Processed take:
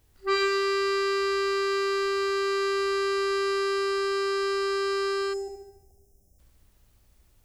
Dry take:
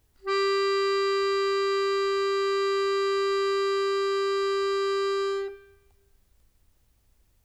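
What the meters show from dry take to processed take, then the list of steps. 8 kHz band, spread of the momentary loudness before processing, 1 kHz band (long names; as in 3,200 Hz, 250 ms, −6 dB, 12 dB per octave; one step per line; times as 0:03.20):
can't be measured, 2 LU, −0.5 dB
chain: flutter between parallel walls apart 12 metres, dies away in 0.86 s
gain on a spectral selection 0:05.34–0:06.39, 810–5,000 Hz −23 dB
level +2.5 dB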